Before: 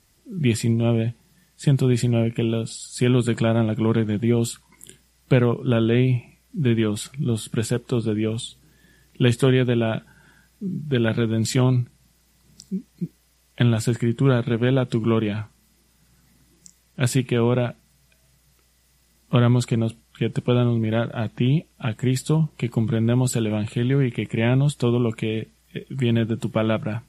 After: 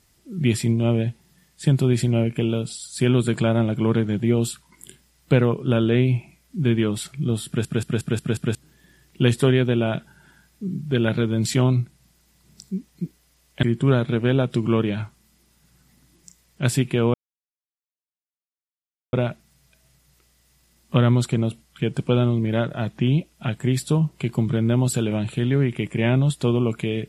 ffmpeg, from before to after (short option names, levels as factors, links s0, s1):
-filter_complex "[0:a]asplit=9[s0][s1][s2][s3][s4][s5][s6][s7][s8];[s0]atrim=end=7.652[s9];[s1]atrim=start=7.468:end=7.652[s10];[s2]atrim=start=7.468:end=7.652[s11];[s3]atrim=start=7.468:end=7.652[s12];[s4]atrim=start=7.468:end=7.652[s13];[s5]atrim=start=7.468:end=7.652[s14];[s6]atrim=start=8.548:end=13.632[s15];[s7]atrim=start=14.008:end=17.52,asetpts=PTS-STARTPTS,afade=t=out:st=3.508:d=0.004:c=hsin,apad=pad_dur=1.99[s16];[s8]atrim=start=17.52,asetpts=PTS-STARTPTS,afade=t=in:d=0.004:c=hsin[s17];[s9][s10]acrossfade=d=0.004:c1=hsin:c2=hsin[s18];[s18][s11]acrossfade=d=0.004:c1=hsin:c2=hsin[s19];[s19][s12]acrossfade=d=0.004:c1=hsin:c2=hsin[s20];[s20][s13]acrossfade=d=0.004:c1=hsin:c2=hsin[s21];[s21][s14]acrossfade=d=0.004:c1=hsin:c2=hsin[s22];[s22][s15]acrossfade=d=0.004:c1=hsin:c2=hsin[s23];[s16][s17]concat=n=2:v=0:a=1[s24];[s23][s24]acrossfade=d=0.004:c1=hsin:c2=hsin"